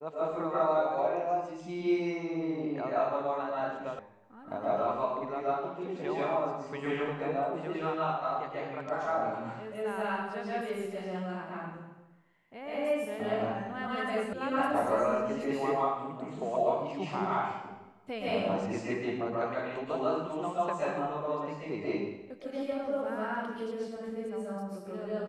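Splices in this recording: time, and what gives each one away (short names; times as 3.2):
3.99 sound cut off
14.33 sound cut off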